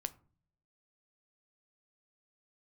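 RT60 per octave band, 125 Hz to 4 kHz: 0.90 s, 0.80 s, 0.50 s, 0.40 s, 0.30 s, 0.20 s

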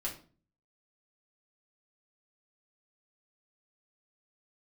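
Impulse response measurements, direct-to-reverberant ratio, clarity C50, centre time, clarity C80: -4.0 dB, 10.0 dB, 19 ms, 15.5 dB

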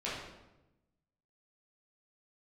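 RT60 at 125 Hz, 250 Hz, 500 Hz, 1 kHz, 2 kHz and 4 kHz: 1.4 s, 1.3 s, 1.1 s, 0.90 s, 0.80 s, 0.70 s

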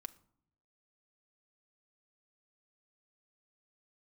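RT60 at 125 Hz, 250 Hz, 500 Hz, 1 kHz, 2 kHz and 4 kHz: 1.0 s, 0.90 s, 0.75 s, 0.65 s, 0.45 s, 0.35 s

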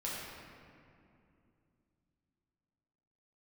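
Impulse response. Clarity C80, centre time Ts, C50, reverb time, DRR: 0.0 dB, 132 ms, -2.0 dB, 2.6 s, -7.0 dB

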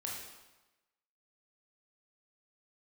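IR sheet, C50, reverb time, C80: 1.5 dB, 1.1 s, 4.0 dB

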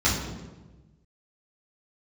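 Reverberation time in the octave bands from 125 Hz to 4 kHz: 1.7 s, 1.4 s, 1.3 s, 1.1 s, 0.90 s, 0.80 s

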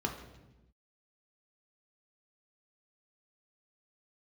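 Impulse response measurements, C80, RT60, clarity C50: 10.0 dB, 1.0 s, 7.5 dB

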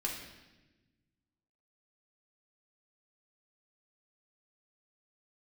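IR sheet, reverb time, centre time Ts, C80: 1.1 s, 46 ms, 6.5 dB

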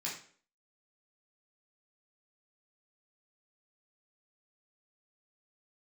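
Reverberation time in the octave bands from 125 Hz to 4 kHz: 0.45 s, 0.50 s, 0.50 s, 0.45 s, 0.45 s, 0.40 s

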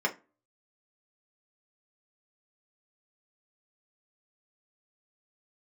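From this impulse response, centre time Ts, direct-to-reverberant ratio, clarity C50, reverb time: 9 ms, -1.0 dB, 17.0 dB, 0.30 s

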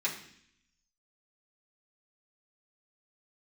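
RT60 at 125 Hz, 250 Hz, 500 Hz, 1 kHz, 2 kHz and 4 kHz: 0.95 s, 0.90 s, 0.65 s, 0.60 s, 0.80 s, 0.80 s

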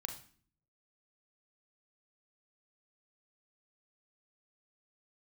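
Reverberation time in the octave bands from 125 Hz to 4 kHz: 0.95 s, 0.75 s, 0.50 s, 0.45 s, 0.45 s, 0.45 s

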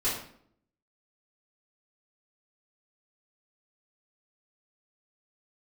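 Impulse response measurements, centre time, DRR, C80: 44 ms, -13.0 dB, 7.5 dB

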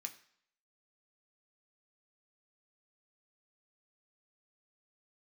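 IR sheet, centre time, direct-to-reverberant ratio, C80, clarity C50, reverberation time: 8 ms, 3.5 dB, 17.0 dB, 14.0 dB, 0.60 s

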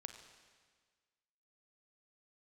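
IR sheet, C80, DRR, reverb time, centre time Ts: 8.5 dB, 6.0 dB, 1.6 s, 28 ms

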